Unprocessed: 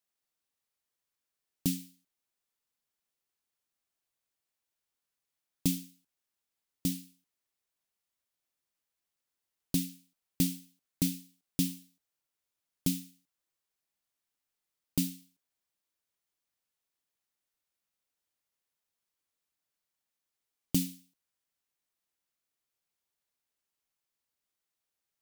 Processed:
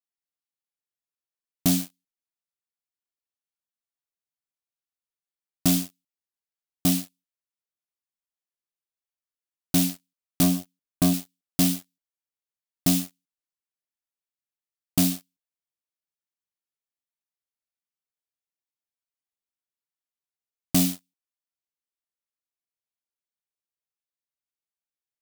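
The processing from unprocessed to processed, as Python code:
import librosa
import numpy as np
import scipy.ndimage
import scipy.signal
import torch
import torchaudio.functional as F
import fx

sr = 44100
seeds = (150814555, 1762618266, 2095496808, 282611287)

y = fx.tilt_shelf(x, sr, db=3.5, hz=790.0, at=(10.43, 11.14))
y = fx.leveller(y, sr, passes=5)
y = y * librosa.db_to_amplitude(-1.5)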